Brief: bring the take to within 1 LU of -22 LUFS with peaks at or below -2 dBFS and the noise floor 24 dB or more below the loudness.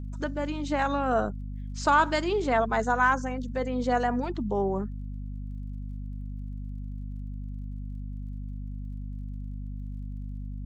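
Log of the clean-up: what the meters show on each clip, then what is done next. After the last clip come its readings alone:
ticks 29/s; hum 50 Hz; harmonics up to 250 Hz; hum level -33 dBFS; loudness -30.0 LUFS; peak -10.0 dBFS; loudness target -22.0 LUFS
-> de-click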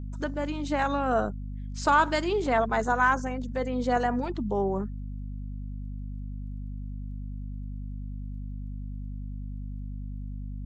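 ticks 0/s; hum 50 Hz; harmonics up to 250 Hz; hum level -33 dBFS
-> notches 50/100/150/200/250 Hz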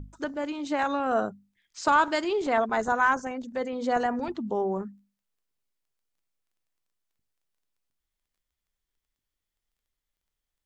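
hum none; loudness -27.5 LUFS; peak -10.0 dBFS; loudness target -22.0 LUFS
-> gain +5.5 dB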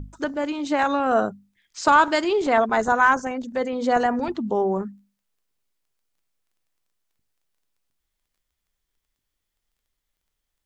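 loudness -22.0 LUFS; peak -4.5 dBFS; noise floor -80 dBFS

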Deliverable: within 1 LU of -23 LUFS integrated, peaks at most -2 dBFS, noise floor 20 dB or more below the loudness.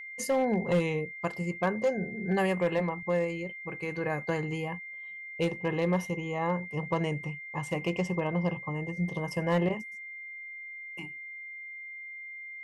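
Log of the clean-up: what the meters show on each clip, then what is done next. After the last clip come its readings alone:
clipped 0.4%; flat tops at -20.0 dBFS; steady tone 2100 Hz; tone level -40 dBFS; loudness -32.0 LUFS; peak -20.0 dBFS; loudness target -23.0 LUFS
-> clip repair -20 dBFS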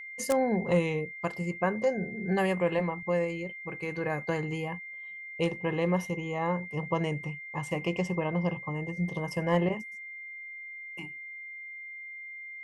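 clipped 0.0%; steady tone 2100 Hz; tone level -40 dBFS
-> notch 2100 Hz, Q 30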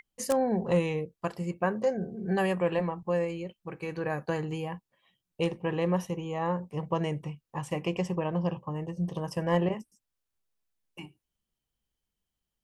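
steady tone none; loudness -31.0 LUFS; peak -11.0 dBFS; loudness target -23.0 LUFS
-> gain +8 dB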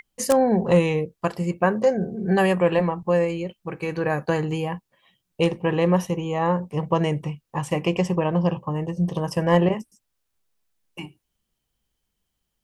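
loudness -23.0 LUFS; peak -3.0 dBFS; noise floor -78 dBFS

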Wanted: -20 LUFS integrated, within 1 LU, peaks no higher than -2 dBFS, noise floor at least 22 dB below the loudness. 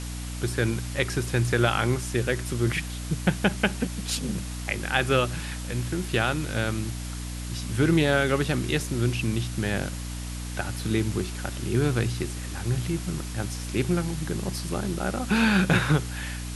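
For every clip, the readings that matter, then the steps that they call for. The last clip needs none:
hum 60 Hz; harmonics up to 300 Hz; hum level -32 dBFS; noise floor -34 dBFS; noise floor target -49 dBFS; loudness -27.0 LUFS; peak -5.5 dBFS; loudness target -20.0 LUFS
-> notches 60/120/180/240/300 Hz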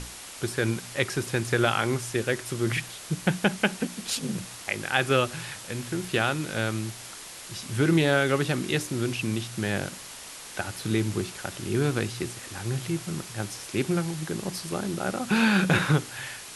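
hum none; noise floor -42 dBFS; noise floor target -50 dBFS
-> denoiser 8 dB, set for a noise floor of -42 dBFS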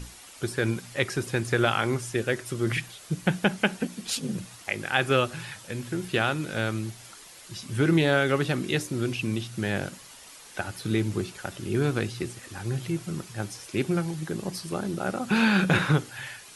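noise floor -48 dBFS; noise floor target -50 dBFS
-> denoiser 6 dB, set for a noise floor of -48 dBFS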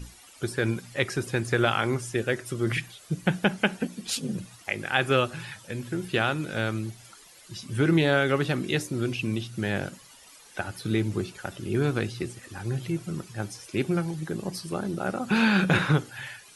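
noise floor -52 dBFS; loudness -27.5 LUFS; peak -5.5 dBFS; loudness target -20.0 LUFS
-> gain +7.5 dB; limiter -2 dBFS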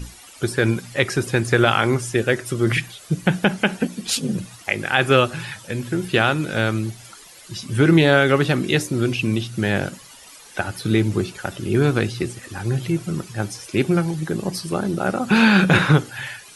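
loudness -20.5 LUFS; peak -2.0 dBFS; noise floor -44 dBFS

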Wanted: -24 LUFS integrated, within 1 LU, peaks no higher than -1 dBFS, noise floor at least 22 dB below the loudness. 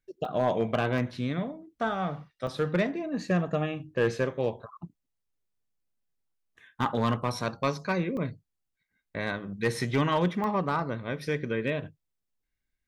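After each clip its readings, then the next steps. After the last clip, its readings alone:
clipped 0.3%; flat tops at -17.5 dBFS; dropouts 5; longest dropout 2.3 ms; loudness -30.0 LUFS; peak -17.5 dBFS; loudness target -24.0 LUFS
-> clip repair -17.5 dBFS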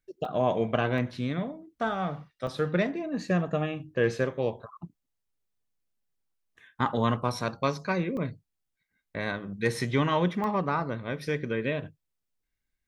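clipped 0.0%; dropouts 5; longest dropout 2.3 ms
-> interpolate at 0.25/0.98/2.47/8.17/10.44, 2.3 ms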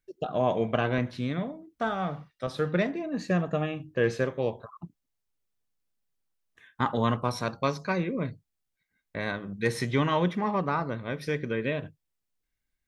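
dropouts 0; loudness -29.5 LUFS; peak -10.0 dBFS; loudness target -24.0 LUFS
-> gain +5.5 dB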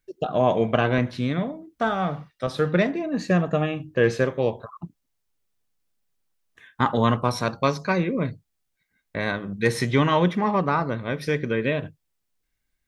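loudness -24.0 LUFS; peak -4.5 dBFS; noise floor -77 dBFS

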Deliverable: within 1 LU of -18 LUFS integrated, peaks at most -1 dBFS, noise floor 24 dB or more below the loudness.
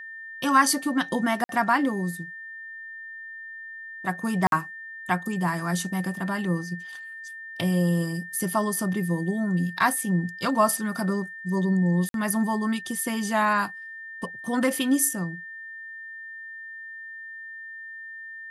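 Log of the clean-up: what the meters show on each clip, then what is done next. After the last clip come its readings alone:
dropouts 3; longest dropout 52 ms; steady tone 1800 Hz; tone level -37 dBFS; loudness -25.5 LUFS; peak -7.0 dBFS; loudness target -18.0 LUFS
-> interpolate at 1.44/4.47/12.09, 52 ms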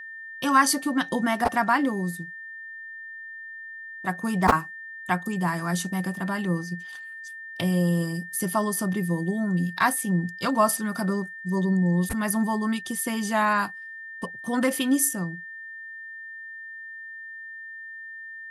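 dropouts 0; steady tone 1800 Hz; tone level -37 dBFS
-> notch 1800 Hz, Q 30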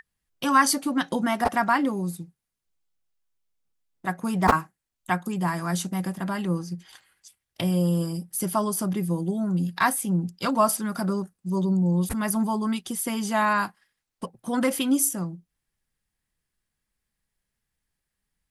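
steady tone none; loudness -25.5 LUFS; peak -3.5 dBFS; loudness target -18.0 LUFS
-> gain +7.5 dB; limiter -1 dBFS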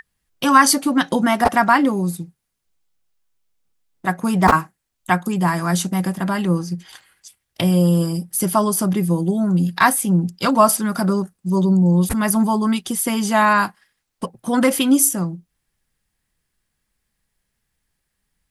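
loudness -18.0 LUFS; peak -1.0 dBFS; noise floor -76 dBFS

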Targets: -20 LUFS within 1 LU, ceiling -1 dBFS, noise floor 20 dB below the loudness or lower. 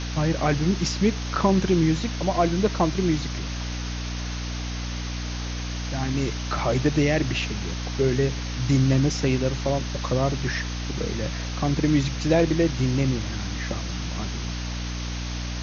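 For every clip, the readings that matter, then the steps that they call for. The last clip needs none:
hum 60 Hz; harmonics up to 300 Hz; hum level -28 dBFS; noise floor -30 dBFS; noise floor target -45 dBFS; loudness -25.0 LUFS; peak -6.5 dBFS; loudness target -20.0 LUFS
-> de-hum 60 Hz, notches 5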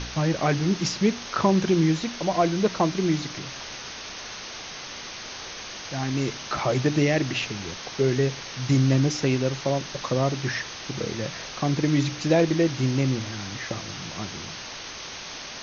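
hum none; noise floor -38 dBFS; noise floor target -46 dBFS
-> denoiser 8 dB, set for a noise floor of -38 dBFS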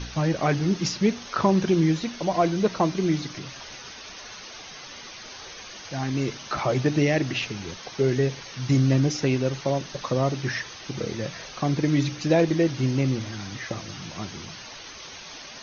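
noise floor -42 dBFS; noise floor target -45 dBFS
-> denoiser 6 dB, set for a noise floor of -42 dBFS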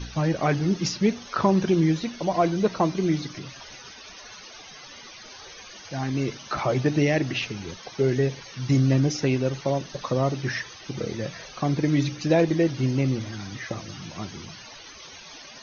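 noise floor -45 dBFS; loudness -25.0 LUFS; peak -7.5 dBFS; loudness target -20.0 LUFS
-> gain +5 dB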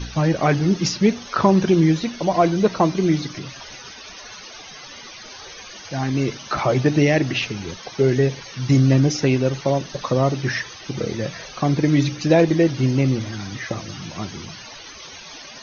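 loudness -20.0 LUFS; peak -2.5 dBFS; noise floor -40 dBFS

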